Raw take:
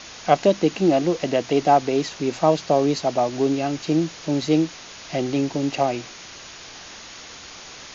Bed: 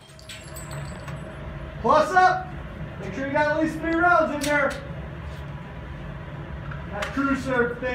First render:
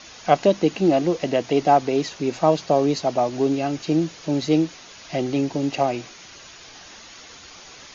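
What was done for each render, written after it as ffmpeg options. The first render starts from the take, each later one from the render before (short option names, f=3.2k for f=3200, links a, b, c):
-af "afftdn=nr=6:nf=-41"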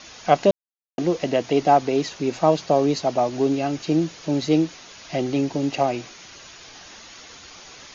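-filter_complex "[0:a]asplit=3[a][b][c];[a]atrim=end=0.51,asetpts=PTS-STARTPTS,afade=t=out:st=0.506:d=0.004:c=hsin[d];[b]atrim=start=0.51:end=0.98,asetpts=PTS-STARTPTS,volume=0[e];[c]atrim=start=0.98,asetpts=PTS-STARTPTS,afade=t=in:d=0.004:c=hsin[f];[d][e][f]concat=n=3:v=0:a=1"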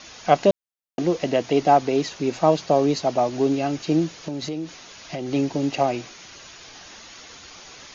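-filter_complex "[0:a]asettb=1/sr,asplit=3[a][b][c];[a]atrim=end=4.284[d];[b]atrim=start=4.28:end=5.32,asetpts=PTS-STARTPTS,afade=t=in:d=0.004:c=qsin,afade=t=out:st=1.036:d=0.004:c=qsin,acompressor=threshold=-25dB:ratio=8:attack=3.2:release=140:knee=1:detection=peak[e];[c]atrim=start=5.316[f];[d][e]acrossfade=d=0.004:c1=hsin:c2=qsin[g];[g][f]acrossfade=d=0.004:c1=qsin:c2=hsin"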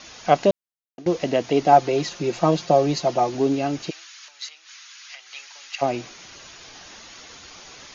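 -filter_complex "[0:a]asettb=1/sr,asplit=3[a][b][c];[a]atrim=end=1.724[d];[b]atrim=start=1.72:end=3.35,asetpts=PTS-STARTPTS,afade=t=in:d=0.004:c=qsin,afade=t=out:st=1.626:d=0.004:c=qsin,aecho=1:1:5.7:0.57,atrim=end_sample=71883[e];[c]atrim=start=3.346[f];[d][e]acrossfade=d=0.004:c1=hsin:c2=qsin[g];[g][f]acrossfade=d=0.004:c1=qsin:c2=hsin,asplit=3[h][i][j];[h]afade=t=out:st=3.89:d=0.02[k];[i]highpass=f=1.3k:w=0.5412,highpass=f=1.3k:w=1.3066,afade=t=in:st=3.89:d=0.02,afade=t=out:st=5.81:d=0.02[l];[j]afade=t=in:st=5.81:d=0.02[m];[k][l][m]amix=inputs=3:normalize=0,asplit=2[n][o];[n]atrim=end=1.06,asetpts=PTS-STARTPTS,afade=t=out:st=0.42:d=0.64:silence=0.105925[p];[o]atrim=start=1.06,asetpts=PTS-STARTPTS,afade=t=in:d=0.004:c=hsin:silence=0.105925[q];[p][q]concat=n=2:v=0:a=1"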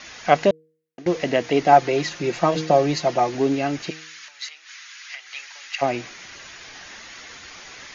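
-af "equalizer=f=1.9k:t=o:w=0.85:g=8,bandreject=f=157.7:t=h:w=4,bandreject=f=315.4:t=h:w=4,bandreject=f=473.1:t=h:w=4"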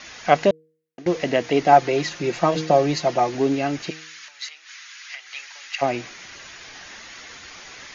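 -af anull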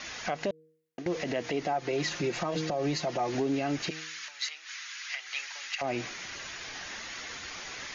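-af "acompressor=threshold=-22dB:ratio=3,alimiter=limit=-21.5dB:level=0:latency=1:release=85"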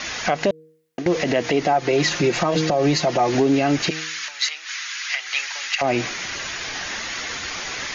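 -af "volume=11.5dB"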